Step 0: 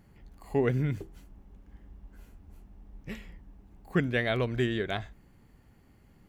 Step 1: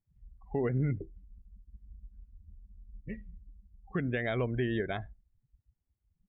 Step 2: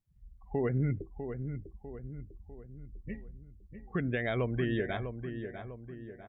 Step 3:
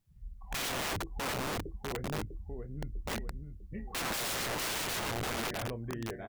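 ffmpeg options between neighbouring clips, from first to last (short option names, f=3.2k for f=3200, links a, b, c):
-af "lowpass=3.4k,afftdn=nr=34:nf=-40,alimiter=limit=-22dB:level=0:latency=1:release=86"
-filter_complex "[0:a]asplit=2[a][b];[b]adelay=649,lowpass=f=1.9k:p=1,volume=-8dB,asplit=2[c][d];[d]adelay=649,lowpass=f=1.9k:p=1,volume=0.49,asplit=2[e][f];[f]adelay=649,lowpass=f=1.9k:p=1,volume=0.49,asplit=2[g][h];[h]adelay=649,lowpass=f=1.9k:p=1,volume=0.49,asplit=2[i][j];[j]adelay=649,lowpass=f=1.9k:p=1,volume=0.49,asplit=2[k][l];[l]adelay=649,lowpass=f=1.9k:p=1,volume=0.49[m];[a][c][e][g][i][k][m]amix=inputs=7:normalize=0"
-filter_complex "[0:a]asplit=2[a][b];[b]adelay=27,volume=-10.5dB[c];[a][c]amix=inputs=2:normalize=0,aeval=exprs='(mod(66.8*val(0)+1,2)-1)/66.8':c=same,volume=6.5dB"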